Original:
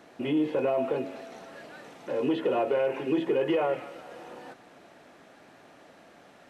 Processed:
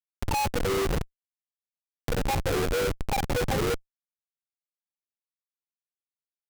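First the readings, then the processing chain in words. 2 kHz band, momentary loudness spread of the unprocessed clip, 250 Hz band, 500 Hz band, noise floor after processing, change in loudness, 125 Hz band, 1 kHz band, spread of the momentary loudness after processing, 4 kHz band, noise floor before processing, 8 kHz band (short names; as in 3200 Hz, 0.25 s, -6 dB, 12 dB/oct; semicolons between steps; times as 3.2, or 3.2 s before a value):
+5.0 dB, 19 LU, -4.5 dB, -3.0 dB, under -85 dBFS, 0.0 dB, +12.0 dB, +4.0 dB, 7 LU, +8.0 dB, -55 dBFS, n/a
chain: spectrum mirrored in octaves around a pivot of 510 Hz; HPF 170 Hz 6 dB/oct; comb 2.4 ms, depth 98%; in parallel at +1 dB: compressor 16:1, threshold -38 dBFS, peak gain reduction 20.5 dB; on the sum: Schmitt trigger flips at -24 dBFS; upward compressor, threshold -33 dBFS; gain +2.5 dB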